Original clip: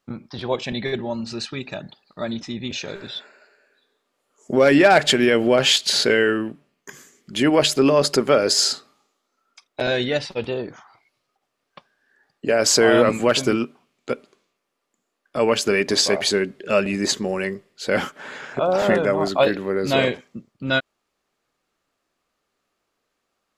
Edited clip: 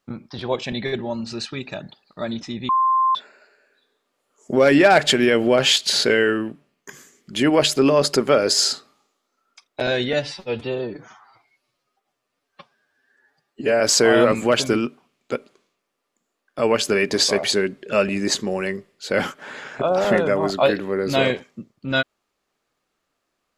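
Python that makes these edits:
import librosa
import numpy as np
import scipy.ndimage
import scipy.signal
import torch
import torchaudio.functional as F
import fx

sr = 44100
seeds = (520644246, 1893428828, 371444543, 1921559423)

y = fx.edit(x, sr, fx.bleep(start_s=2.69, length_s=0.46, hz=1050.0, db=-14.5),
    fx.stretch_span(start_s=10.13, length_s=2.45, factor=1.5), tone=tone)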